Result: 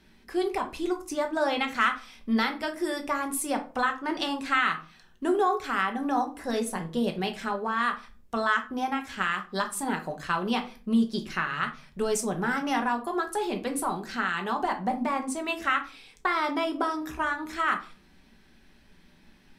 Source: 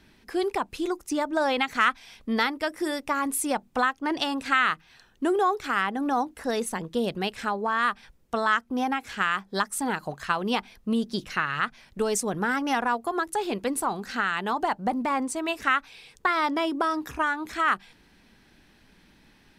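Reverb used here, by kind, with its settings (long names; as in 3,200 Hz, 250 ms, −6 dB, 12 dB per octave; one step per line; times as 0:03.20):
rectangular room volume 220 cubic metres, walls furnished, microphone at 1.1 metres
level −3.5 dB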